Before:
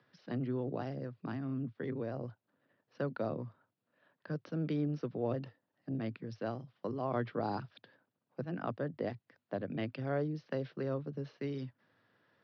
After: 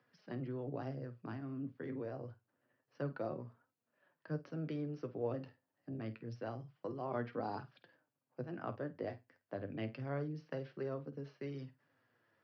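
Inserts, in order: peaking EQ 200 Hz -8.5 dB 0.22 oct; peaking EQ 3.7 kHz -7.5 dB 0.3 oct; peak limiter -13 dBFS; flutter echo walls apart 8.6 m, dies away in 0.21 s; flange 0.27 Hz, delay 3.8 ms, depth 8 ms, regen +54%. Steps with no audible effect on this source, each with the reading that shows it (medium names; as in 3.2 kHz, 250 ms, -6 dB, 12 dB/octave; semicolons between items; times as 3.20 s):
peak limiter -13 dBFS: peak at its input -22.0 dBFS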